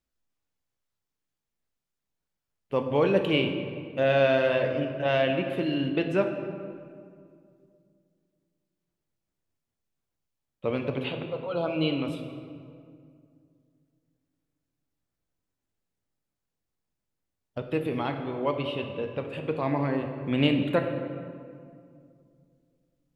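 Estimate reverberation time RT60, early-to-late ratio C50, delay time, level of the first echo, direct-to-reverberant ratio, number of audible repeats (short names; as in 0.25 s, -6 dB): 2.3 s, 6.5 dB, none, none, 4.5 dB, none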